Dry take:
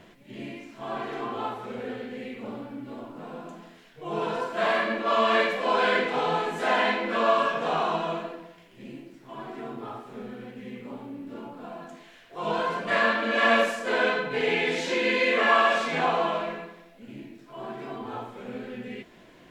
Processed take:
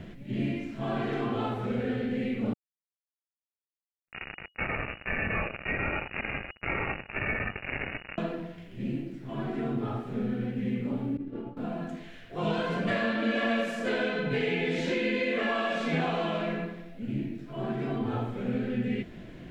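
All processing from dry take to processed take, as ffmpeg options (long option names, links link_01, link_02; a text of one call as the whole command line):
ffmpeg -i in.wav -filter_complex "[0:a]asettb=1/sr,asplit=3[link_01][link_02][link_03];[link_01]atrim=end=2.534[link_04];[link_02]atrim=start=2.53:end=8.18,asetpts=PTS-STARTPTS,afade=type=in:duration=0.004:curve=qsin,afade=type=out:start_time=5.646:duration=0.004:curve=qsin,flanger=delay=15.5:depth=6.5:speed=1.3,acrusher=bits=3:mix=0:aa=0.5,lowpass=frequency=2500:width_type=q:width=0.5098,lowpass=frequency=2500:width_type=q:width=0.6013,lowpass=frequency=2500:width_type=q:width=0.9,lowpass=frequency=2500:width_type=q:width=2.563,afreqshift=-2900[link_05];[link_03]atrim=start=8.176[link_06];[link_04][link_05]acrossfade=duration=0.004:curve1=hsin:curve2=qsin[link_07];[link_07][link_06]acrossfade=duration=0.004:curve1=qsin:curve2=hsin,asettb=1/sr,asplit=3[link_08][link_09][link_10];[link_08]atrim=end=11.174[link_11];[link_09]atrim=start=11.17:end=11.57,asetpts=PTS-STARTPTS,afade=type=in:duration=0.004:curve=qsin,afade=type=out:start_time=0.396:duration=0.004:curve=qsin,lowpass=frequency=2200:poles=1,aecho=1:1:2.5:0.41,atrim=end_sample=17640,agate=range=-33dB:threshold=-35dB:ratio=3:release=100:detection=peak[link_12];[link_10]atrim=start=11.566[link_13];[link_11][link_12]acrossfade=duration=0.004:curve1=hsin:curve2=qsin[link_14];[link_14][link_13]acrossfade=duration=0.004:curve1=qsin:curve2=hsin,equalizer=frequency=1000:width=2.8:gain=-7.5,acrossover=split=1000|2400[link_15][link_16][link_17];[link_15]acompressor=threshold=-34dB:ratio=4[link_18];[link_16]acompressor=threshold=-42dB:ratio=4[link_19];[link_17]acompressor=threshold=-41dB:ratio=4[link_20];[link_18][link_19][link_20]amix=inputs=3:normalize=0,bass=frequency=250:gain=13,treble=frequency=4000:gain=-7,volume=3dB" out.wav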